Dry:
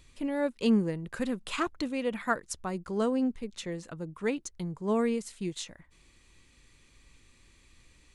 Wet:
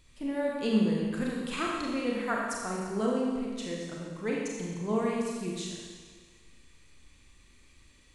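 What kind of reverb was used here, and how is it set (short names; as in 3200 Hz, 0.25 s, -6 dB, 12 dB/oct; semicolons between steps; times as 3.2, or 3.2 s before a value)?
Schroeder reverb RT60 1.6 s, combs from 29 ms, DRR -3 dB; gain -4 dB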